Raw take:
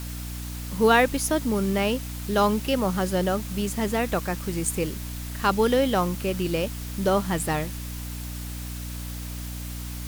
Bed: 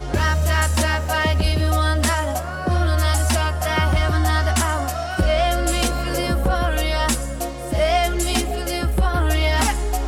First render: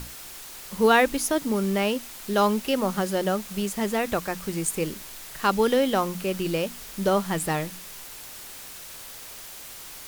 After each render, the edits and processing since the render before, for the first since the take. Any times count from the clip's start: notches 60/120/180/240/300 Hz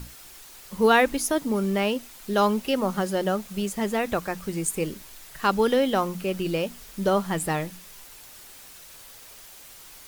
denoiser 6 dB, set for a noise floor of -42 dBFS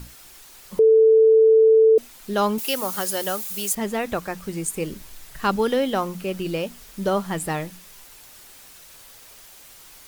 0.79–1.98 bleep 443 Hz -10.5 dBFS; 2.58–3.75 RIAA curve recording; 4.91–5.56 low shelf 170 Hz +8.5 dB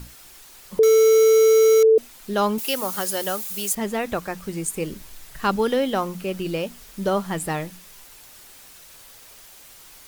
0.83–1.84 block floating point 3-bit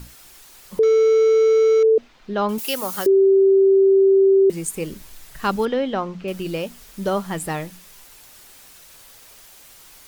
0.79–2.49 air absorption 210 m; 3.06–4.5 bleep 388 Hz -10.5 dBFS; 5.65–6.28 air absorption 160 m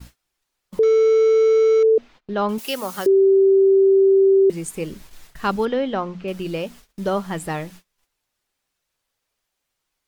gate -41 dBFS, range -28 dB; high shelf 7600 Hz -8.5 dB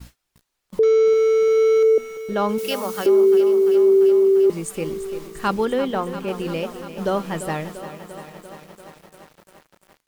feedback echo 0.781 s, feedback 26%, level -21.5 dB; lo-fi delay 0.344 s, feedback 80%, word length 7-bit, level -12 dB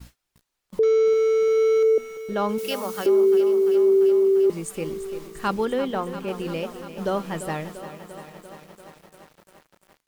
gain -3 dB

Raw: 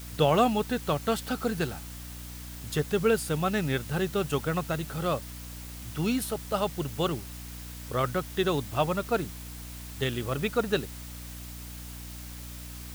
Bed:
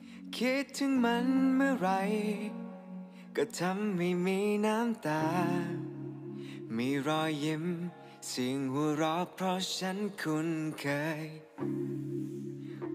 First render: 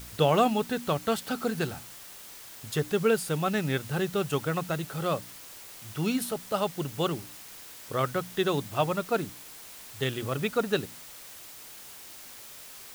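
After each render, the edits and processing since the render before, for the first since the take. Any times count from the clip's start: de-hum 60 Hz, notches 5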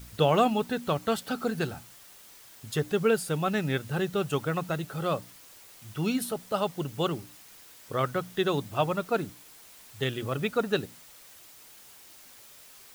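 denoiser 6 dB, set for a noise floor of -46 dBFS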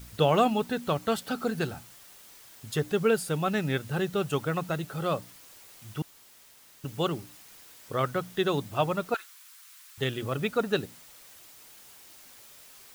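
6.02–6.84 room tone; 9.14–9.98 Chebyshev high-pass 1200 Hz, order 3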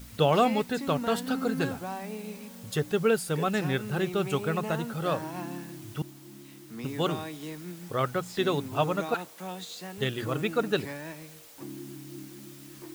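add bed -6.5 dB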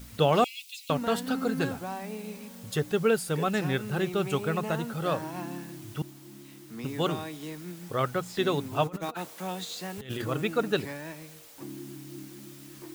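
0.44–0.9 steep high-pass 2400 Hz 72 dB/oct; 8.87–10.22 negative-ratio compressor -34 dBFS, ratio -0.5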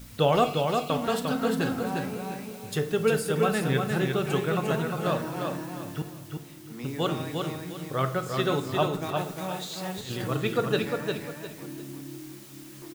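on a send: feedback echo 0.352 s, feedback 28%, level -4.5 dB; on the sum: shoebox room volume 150 m³, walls mixed, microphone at 0.34 m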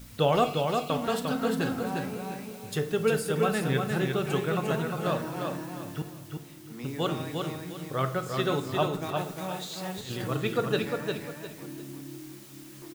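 gain -1.5 dB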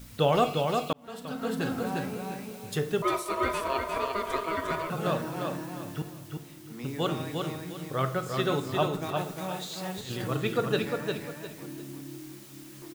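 0.93–1.79 fade in; 3.02–4.9 ring modulator 810 Hz

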